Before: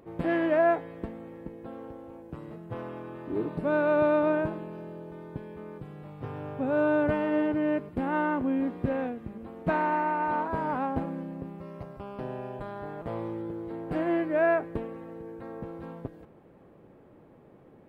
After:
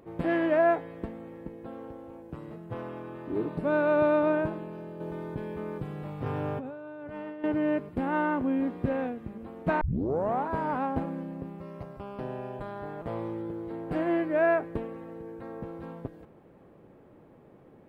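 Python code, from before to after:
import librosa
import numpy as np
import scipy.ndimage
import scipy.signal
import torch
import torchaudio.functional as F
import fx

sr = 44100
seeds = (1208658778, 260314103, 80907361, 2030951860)

y = fx.over_compress(x, sr, threshold_db=-36.0, ratio=-1.0, at=(5.0, 7.44))
y = fx.edit(y, sr, fx.tape_start(start_s=9.81, length_s=0.66), tone=tone)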